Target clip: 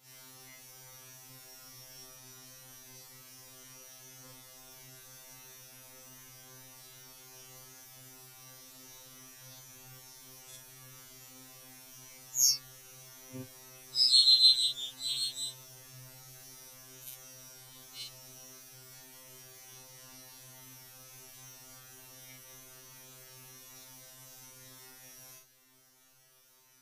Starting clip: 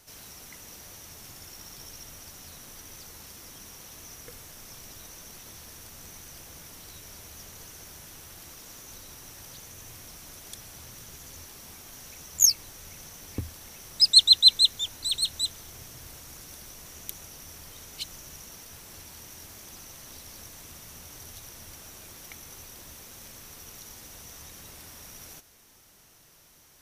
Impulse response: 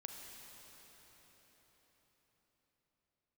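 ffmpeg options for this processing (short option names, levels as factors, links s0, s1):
-af "afftfilt=real='re':imag='-im':win_size=4096:overlap=0.75,afftfilt=real='re*2.45*eq(mod(b,6),0)':imag='im*2.45*eq(mod(b,6),0)':win_size=2048:overlap=0.75"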